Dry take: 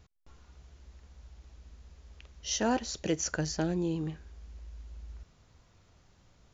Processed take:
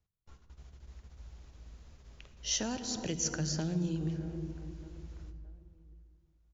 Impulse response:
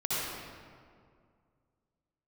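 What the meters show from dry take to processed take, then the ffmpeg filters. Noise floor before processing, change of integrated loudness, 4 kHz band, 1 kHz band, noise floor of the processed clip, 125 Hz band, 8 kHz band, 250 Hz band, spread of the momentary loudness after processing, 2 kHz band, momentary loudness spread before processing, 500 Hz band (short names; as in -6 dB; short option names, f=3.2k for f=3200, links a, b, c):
-64 dBFS, -3.5 dB, +0.5 dB, -9.5 dB, -69 dBFS, +1.5 dB, n/a, -2.5 dB, 21 LU, -5.5 dB, 19 LU, -7.0 dB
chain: -filter_complex "[0:a]agate=range=-24dB:threshold=-53dB:ratio=16:detection=peak,asplit=2[a][b];[b]adelay=619,lowpass=f=3.2k:p=1,volume=-24dB,asplit=2[c][d];[d]adelay=619,lowpass=f=3.2k:p=1,volume=0.44,asplit=2[e][f];[f]adelay=619,lowpass=f=3.2k:p=1,volume=0.44[g];[a][c][e][g]amix=inputs=4:normalize=0,asplit=2[h][i];[1:a]atrim=start_sample=2205,lowshelf=f=350:g=11.5[j];[i][j]afir=irnorm=-1:irlink=0,volume=-20dB[k];[h][k]amix=inputs=2:normalize=0,acrossover=split=170|3000[l][m][n];[m]acompressor=threshold=-37dB:ratio=6[o];[l][o][n]amix=inputs=3:normalize=0"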